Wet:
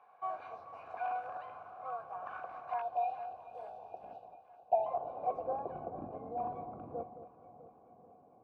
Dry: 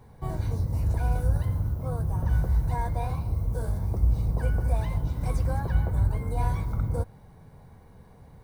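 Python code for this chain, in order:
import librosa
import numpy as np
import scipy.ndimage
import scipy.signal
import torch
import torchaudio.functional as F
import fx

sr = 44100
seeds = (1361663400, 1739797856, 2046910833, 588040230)

p1 = np.minimum(x, 2.0 * 10.0 ** (-19.5 / 20.0) - x)
p2 = fx.filter_sweep_bandpass(p1, sr, from_hz=1600.0, to_hz=280.0, start_s=3.93, end_s=5.95, q=1.8)
p3 = fx.over_compress(p2, sr, threshold_db=-59.0, ratio=-0.5, at=(4.15, 4.72))
p4 = fx.vowel_filter(p3, sr, vowel='a')
p5 = fx.spec_erase(p4, sr, start_s=2.82, length_s=2.04, low_hz=930.0, high_hz=2400.0)
p6 = p5 + fx.echo_alternate(p5, sr, ms=218, hz=970.0, feedback_pct=75, wet_db=-11.0, dry=0)
y = p6 * 10.0 ** (15.0 / 20.0)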